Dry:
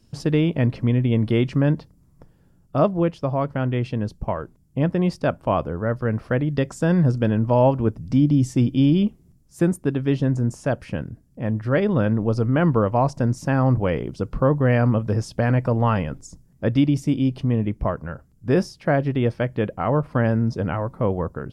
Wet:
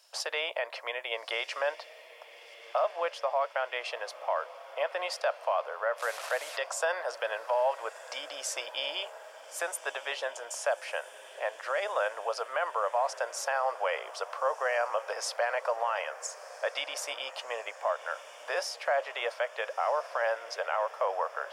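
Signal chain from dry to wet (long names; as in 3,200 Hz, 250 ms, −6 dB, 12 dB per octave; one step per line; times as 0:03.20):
0:05.98–0:06.57: linear delta modulator 64 kbit/s, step −36 dBFS
Butterworth high-pass 580 Hz 48 dB per octave
in parallel at −0.5 dB: downward compressor, threshold −38 dBFS, peak gain reduction 20 dB
on the sum: brickwall limiter −19.5 dBFS, peak gain reduction 10 dB
feedback delay with all-pass diffusion 1,332 ms, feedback 61%, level −16 dB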